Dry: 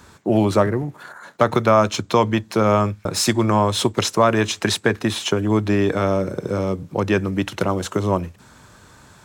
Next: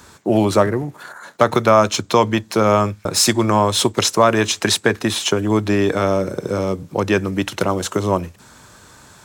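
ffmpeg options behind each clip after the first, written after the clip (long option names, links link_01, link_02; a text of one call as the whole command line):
ffmpeg -i in.wav -af "bass=frequency=250:gain=-3,treble=frequency=4000:gain=4,volume=2.5dB" out.wav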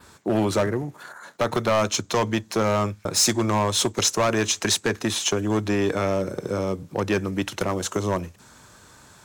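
ffmpeg -i in.wav -af "asoftclip=type=hard:threshold=-11dB,adynamicequalizer=threshold=0.0141:dfrequency=6400:dqfactor=3.3:tfrequency=6400:tqfactor=3.3:attack=5:release=100:ratio=0.375:range=3:mode=boostabove:tftype=bell,volume=-5dB" out.wav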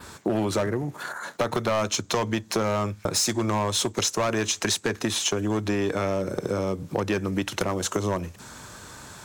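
ffmpeg -i in.wav -af "acompressor=threshold=-31dB:ratio=4,volume=7dB" out.wav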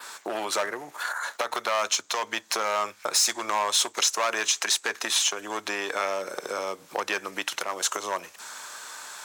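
ffmpeg -i in.wav -af "highpass=840,alimiter=limit=-16.5dB:level=0:latency=1:release=277,volume=4.5dB" out.wav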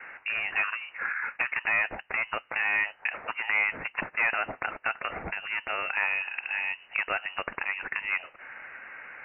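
ffmpeg -i in.wav -af "lowpass=frequency=2600:width_type=q:width=0.5098,lowpass=frequency=2600:width_type=q:width=0.6013,lowpass=frequency=2600:width_type=q:width=0.9,lowpass=frequency=2600:width_type=q:width=2.563,afreqshift=-3100" out.wav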